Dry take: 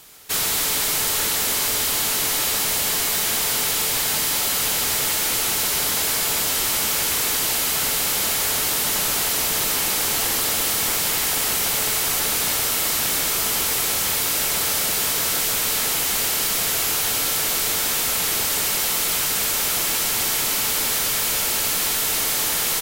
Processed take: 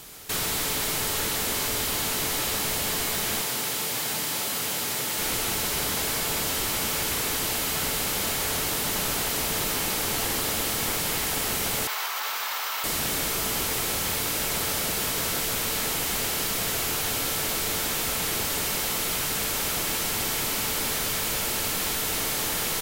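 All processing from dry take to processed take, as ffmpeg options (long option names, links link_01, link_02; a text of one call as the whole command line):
ffmpeg -i in.wav -filter_complex "[0:a]asettb=1/sr,asplit=3[link_01][link_02][link_03];[link_01]atrim=end=3.414[link_04];[link_02]atrim=start=3.41:end=5.18,asetpts=PTS-STARTPTS,afade=type=in:duration=0.004:curve=qsin,afade=type=out:start_time=1.766:duration=0.004:curve=qsin,highpass=120,asplit=2[link_05][link_06];[link_06]adelay=24,volume=-12.5dB[link_07];[link_05][link_07]amix=inputs=2:normalize=0,atrim=end_sample=78057[link_08];[link_03]atrim=start=5.176[link_09];[link_04][link_08]acrossfade=duration=0.004:curve1=hsin:curve2=qsin[link_10];[link_10][link_09]acrossfade=duration=0.004:curve1=qsin:curve2=hsin,asettb=1/sr,asplit=3[link_11][link_12][link_13];[link_11]atrim=end=11.874[link_14];[link_12]atrim=start=11.87:end=12.84,asetpts=PTS-STARTPTS,afade=type=in:duration=0.004:curve=qsin,afade=type=out:start_time=0.966:duration=0.004:curve=qsin,highpass=frequency=1000:width_type=q:width=1.8,equalizer=frequency=9600:width=0.91:gain=-13,asplit=2[link_15][link_16];[link_16]adelay=13,volume=-12dB[link_17];[link_15][link_17]amix=inputs=2:normalize=0,atrim=end_sample=42777[link_18];[link_13]atrim=start=12.836[link_19];[link_14][link_18]acrossfade=duration=0.004:curve1=hsin:curve2=qsin[link_20];[link_20][link_19]acrossfade=duration=0.004:curve1=qsin:curve2=hsin,alimiter=limit=-23.5dB:level=0:latency=1,lowshelf=frequency=490:gain=6,acrossover=split=3900[link_21][link_22];[link_22]acompressor=threshold=-27dB:ratio=4:attack=1:release=60[link_23];[link_21][link_23]amix=inputs=2:normalize=0,volume=2dB" out.wav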